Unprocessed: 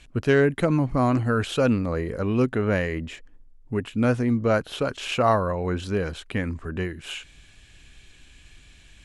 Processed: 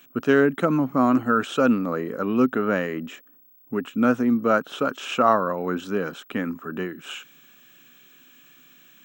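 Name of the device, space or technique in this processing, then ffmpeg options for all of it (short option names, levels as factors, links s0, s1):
old television with a line whistle: -af "highpass=f=170:w=0.5412,highpass=f=170:w=1.3066,equalizer=f=260:t=q:w=4:g=5,equalizer=f=1300:t=q:w=4:g=9,equalizer=f=2100:t=q:w=4:g=-5,equalizer=f=4500:t=q:w=4:g=-9,lowpass=f=8300:w=0.5412,lowpass=f=8300:w=1.3066,aeval=exprs='val(0)+0.00251*sin(2*PI*15734*n/s)':c=same"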